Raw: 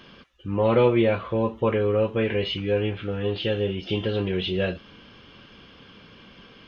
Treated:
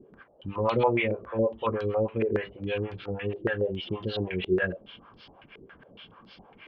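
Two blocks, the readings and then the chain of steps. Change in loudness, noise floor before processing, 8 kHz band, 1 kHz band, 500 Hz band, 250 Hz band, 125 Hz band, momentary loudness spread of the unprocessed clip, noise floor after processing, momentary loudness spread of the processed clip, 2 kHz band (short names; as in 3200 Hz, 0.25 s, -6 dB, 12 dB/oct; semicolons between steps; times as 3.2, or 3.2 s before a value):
-4.5 dB, -51 dBFS, n/a, -0.5 dB, -4.5 dB, -5.5 dB, -6.0 dB, 9 LU, -57 dBFS, 9 LU, 0.0 dB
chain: harmonic tremolo 6.4 Hz, depth 100%, crossover 500 Hz; band noise 91–1000 Hz -65 dBFS; stepped low-pass 7.2 Hz 410–4600 Hz; gain -2 dB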